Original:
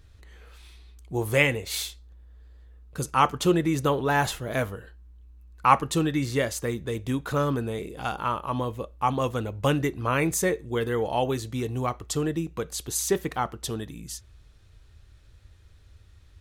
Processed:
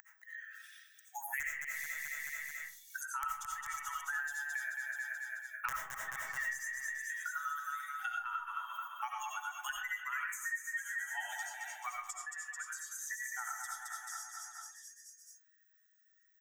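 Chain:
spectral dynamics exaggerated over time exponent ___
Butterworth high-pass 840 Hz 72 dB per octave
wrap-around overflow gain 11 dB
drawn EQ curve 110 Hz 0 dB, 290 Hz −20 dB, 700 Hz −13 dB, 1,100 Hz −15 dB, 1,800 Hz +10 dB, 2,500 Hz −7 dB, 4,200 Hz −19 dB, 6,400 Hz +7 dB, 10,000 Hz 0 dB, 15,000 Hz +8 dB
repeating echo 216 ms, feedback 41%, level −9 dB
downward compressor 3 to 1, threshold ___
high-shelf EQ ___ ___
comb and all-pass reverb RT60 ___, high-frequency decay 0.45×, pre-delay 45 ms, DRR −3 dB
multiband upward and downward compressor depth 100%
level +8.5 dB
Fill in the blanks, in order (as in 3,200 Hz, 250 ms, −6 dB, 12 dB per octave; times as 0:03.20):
2, −48 dBFS, 2,100 Hz, −9.5 dB, 0.42 s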